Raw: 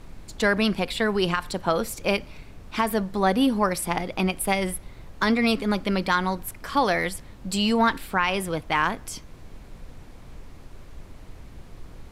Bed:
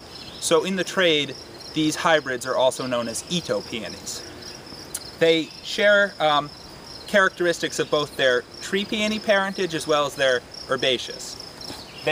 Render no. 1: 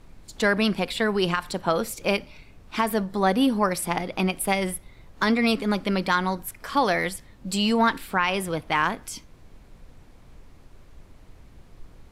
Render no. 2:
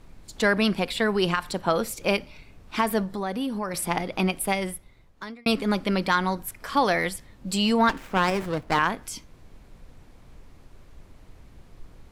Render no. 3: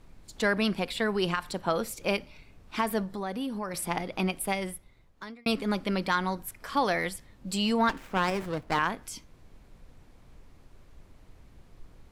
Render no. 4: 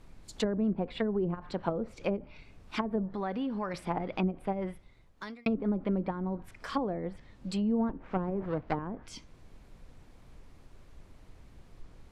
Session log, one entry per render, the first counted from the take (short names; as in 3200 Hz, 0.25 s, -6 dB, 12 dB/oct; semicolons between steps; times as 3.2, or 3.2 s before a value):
noise print and reduce 6 dB
3.07–3.74 compressor 2.5:1, threshold -29 dBFS; 4.31–5.46 fade out; 7.89–8.79 running maximum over 9 samples
gain -4.5 dB
treble ducked by the level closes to 420 Hz, closed at -24 dBFS